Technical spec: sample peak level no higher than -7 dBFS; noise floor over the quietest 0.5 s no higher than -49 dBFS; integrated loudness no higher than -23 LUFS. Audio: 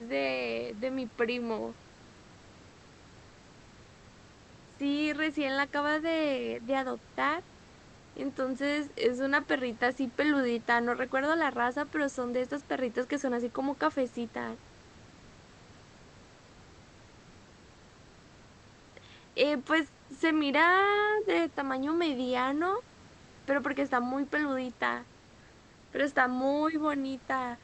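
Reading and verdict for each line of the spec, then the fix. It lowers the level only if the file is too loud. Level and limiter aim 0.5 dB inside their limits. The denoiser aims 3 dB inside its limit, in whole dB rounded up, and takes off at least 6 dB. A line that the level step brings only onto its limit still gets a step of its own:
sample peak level -11.5 dBFS: pass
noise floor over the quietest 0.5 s -56 dBFS: pass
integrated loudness -30.5 LUFS: pass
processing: none needed

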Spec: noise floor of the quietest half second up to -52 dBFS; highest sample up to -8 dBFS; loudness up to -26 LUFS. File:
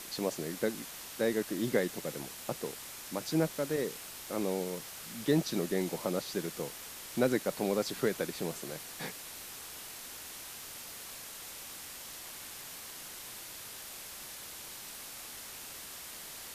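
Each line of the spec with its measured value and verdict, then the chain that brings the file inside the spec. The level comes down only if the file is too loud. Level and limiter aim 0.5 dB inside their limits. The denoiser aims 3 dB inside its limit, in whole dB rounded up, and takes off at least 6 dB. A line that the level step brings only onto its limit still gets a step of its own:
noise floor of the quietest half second -46 dBFS: fail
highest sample -14.5 dBFS: pass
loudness -36.5 LUFS: pass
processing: noise reduction 9 dB, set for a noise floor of -46 dBFS

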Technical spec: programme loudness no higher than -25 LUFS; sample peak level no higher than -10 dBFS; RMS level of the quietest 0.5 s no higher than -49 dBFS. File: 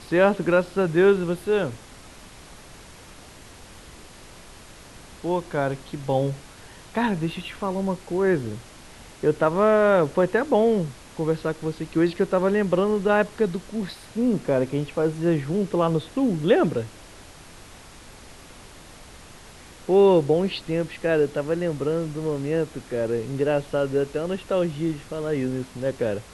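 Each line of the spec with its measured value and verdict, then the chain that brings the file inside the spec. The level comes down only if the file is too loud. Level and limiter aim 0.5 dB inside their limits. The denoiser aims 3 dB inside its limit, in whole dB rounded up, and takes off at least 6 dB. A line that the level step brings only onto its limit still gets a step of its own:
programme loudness -23.5 LUFS: fail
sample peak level -7.0 dBFS: fail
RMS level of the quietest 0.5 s -45 dBFS: fail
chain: noise reduction 6 dB, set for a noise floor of -45 dBFS; trim -2 dB; peak limiter -10.5 dBFS

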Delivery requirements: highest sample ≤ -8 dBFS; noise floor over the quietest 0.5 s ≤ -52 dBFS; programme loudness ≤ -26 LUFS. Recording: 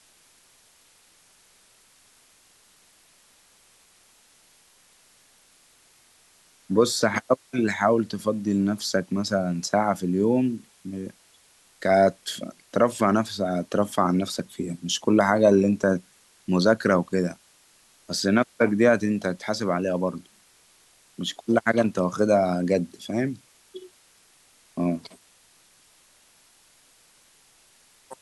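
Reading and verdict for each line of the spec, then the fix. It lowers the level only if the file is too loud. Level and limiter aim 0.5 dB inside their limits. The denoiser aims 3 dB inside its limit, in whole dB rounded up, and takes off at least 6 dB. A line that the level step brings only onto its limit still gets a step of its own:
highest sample -5.5 dBFS: fail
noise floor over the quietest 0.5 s -59 dBFS: pass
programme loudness -24.0 LUFS: fail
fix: trim -2.5 dB; peak limiter -8.5 dBFS

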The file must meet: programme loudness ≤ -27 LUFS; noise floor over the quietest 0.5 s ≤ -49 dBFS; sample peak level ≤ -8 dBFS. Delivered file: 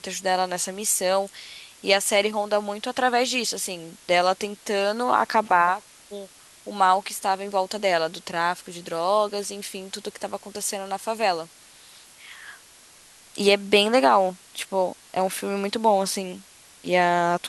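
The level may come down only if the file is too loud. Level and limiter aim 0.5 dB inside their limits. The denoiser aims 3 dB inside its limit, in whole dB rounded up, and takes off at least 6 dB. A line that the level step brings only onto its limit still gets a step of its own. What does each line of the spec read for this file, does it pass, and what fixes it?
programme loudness -23.5 LUFS: fail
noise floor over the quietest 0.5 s -51 dBFS: pass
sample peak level -4.5 dBFS: fail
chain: trim -4 dB

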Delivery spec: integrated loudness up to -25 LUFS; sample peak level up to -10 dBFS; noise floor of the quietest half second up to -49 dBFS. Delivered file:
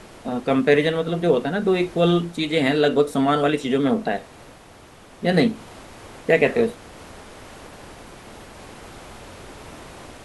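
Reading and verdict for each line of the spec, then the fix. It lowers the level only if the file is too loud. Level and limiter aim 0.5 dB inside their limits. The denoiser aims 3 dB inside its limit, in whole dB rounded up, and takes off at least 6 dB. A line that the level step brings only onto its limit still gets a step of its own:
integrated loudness -21.0 LUFS: fail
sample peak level -2.0 dBFS: fail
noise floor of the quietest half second -46 dBFS: fail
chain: trim -4.5 dB; peak limiter -10.5 dBFS

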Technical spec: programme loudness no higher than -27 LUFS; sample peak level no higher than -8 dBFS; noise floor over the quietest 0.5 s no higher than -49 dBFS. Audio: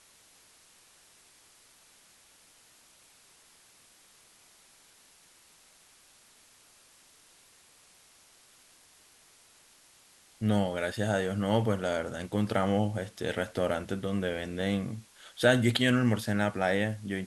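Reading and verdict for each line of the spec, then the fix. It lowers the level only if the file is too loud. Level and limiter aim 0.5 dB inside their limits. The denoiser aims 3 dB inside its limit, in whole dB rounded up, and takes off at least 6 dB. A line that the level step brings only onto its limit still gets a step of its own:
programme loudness -29.5 LUFS: pass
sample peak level -10.0 dBFS: pass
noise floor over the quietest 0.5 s -60 dBFS: pass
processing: none needed

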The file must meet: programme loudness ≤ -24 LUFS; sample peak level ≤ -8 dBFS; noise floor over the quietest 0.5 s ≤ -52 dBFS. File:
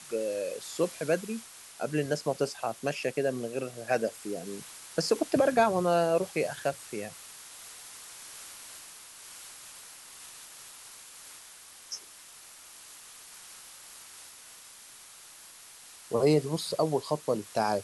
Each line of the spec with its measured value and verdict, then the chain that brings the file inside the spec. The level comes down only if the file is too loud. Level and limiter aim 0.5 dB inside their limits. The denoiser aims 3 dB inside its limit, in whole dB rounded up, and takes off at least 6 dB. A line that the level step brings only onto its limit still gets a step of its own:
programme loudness -30.0 LUFS: pass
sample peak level -10.5 dBFS: pass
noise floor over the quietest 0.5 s -51 dBFS: fail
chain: noise reduction 6 dB, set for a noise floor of -51 dBFS

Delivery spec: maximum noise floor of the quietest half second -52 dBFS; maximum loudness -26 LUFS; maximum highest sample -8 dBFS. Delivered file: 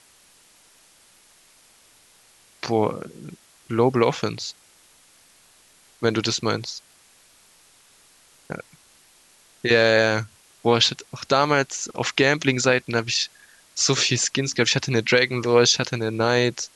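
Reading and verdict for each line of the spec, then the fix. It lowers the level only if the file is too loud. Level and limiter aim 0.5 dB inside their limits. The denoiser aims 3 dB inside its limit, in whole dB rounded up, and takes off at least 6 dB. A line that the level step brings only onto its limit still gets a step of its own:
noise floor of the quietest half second -55 dBFS: pass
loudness -21.0 LUFS: fail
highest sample -4.5 dBFS: fail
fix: trim -5.5 dB

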